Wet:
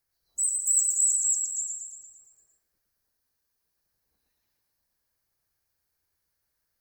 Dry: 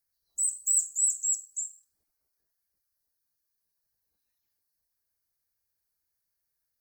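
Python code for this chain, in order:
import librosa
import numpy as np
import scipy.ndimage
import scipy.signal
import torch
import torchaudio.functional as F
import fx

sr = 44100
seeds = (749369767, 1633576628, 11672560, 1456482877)

p1 = fx.high_shelf(x, sr, hz=4500.0, db=-7.5)
p2 = p1 + fx.echo_feedback(p1, sr, ms=114, feedback_pct=58, wet_db=-4, dry=0)
y = F.gain(torch.from_numpy(p2), 7.0).numpy()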